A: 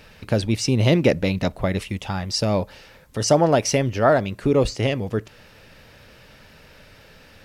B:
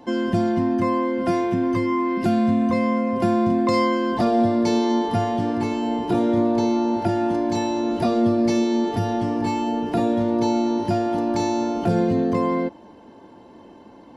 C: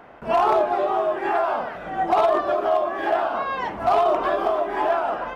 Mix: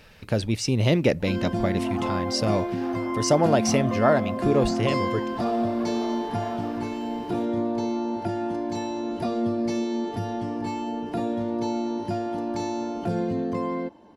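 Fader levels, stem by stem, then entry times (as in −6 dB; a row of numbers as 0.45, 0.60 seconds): −3.5, −6.5, −18.0 decibels; 0.00, 1.20, 1.55 seconds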